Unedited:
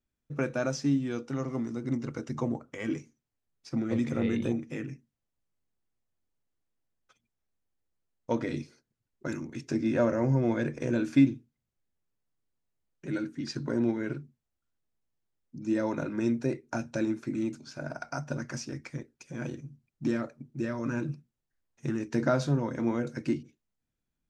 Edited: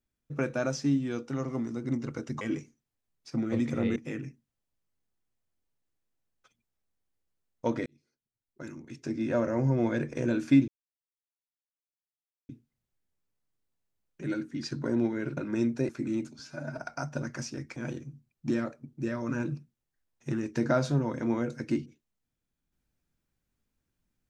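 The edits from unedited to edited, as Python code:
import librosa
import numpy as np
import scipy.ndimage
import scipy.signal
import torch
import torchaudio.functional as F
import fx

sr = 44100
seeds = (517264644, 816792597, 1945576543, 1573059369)

y = fx.edit(x, sr, fx.cut(start_s=2.41, length_s=0.39),
    fx.cut(start_s=4.35, length_s=0.26),
    fx.fade_in_span(start_s=8.51, length_s=1.96),
    fx.insert_silence(at_s=11.33, length_s=1.81),
    fx.cut(start_s=14.21, length_s=1.81),
    fx.cut(start_s=16.54, length_s=0.63),
    fx.stretch_span(start_s=17.67, length_s=0.26, factor=1.5),
    fx.cut(start_s=18.91, length_s=0.42), tone=tone)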